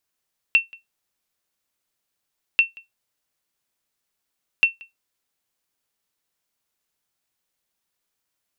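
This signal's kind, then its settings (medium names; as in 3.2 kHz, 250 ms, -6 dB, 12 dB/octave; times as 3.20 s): sonar ping 2.7 kHz, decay 0.16 s, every 2.04 s, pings 3, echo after 0.18 s, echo -26 dB -7 dBFS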